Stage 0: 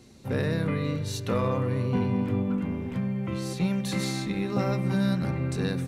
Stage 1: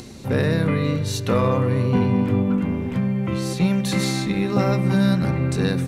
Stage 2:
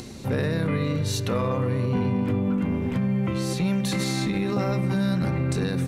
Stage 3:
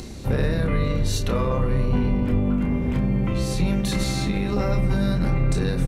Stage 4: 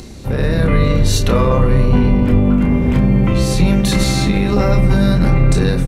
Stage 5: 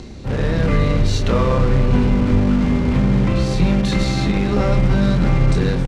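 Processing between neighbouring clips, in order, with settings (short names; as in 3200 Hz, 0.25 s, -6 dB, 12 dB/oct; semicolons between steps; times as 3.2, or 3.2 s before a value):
upward compressor, threshold -39 dBFS; gain +7 dB
limiter -17 dBFS, peak gain reduction 6.5 dB
octaver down 2 oct, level +1 dB; doubler 29 ms -7 dB
AGC gain up to 8 dB; gain +2 dB
in parallel at -10 dB: wrapped overs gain 15.5 dB; on the sum: air absorption 100 m; gain -3 dB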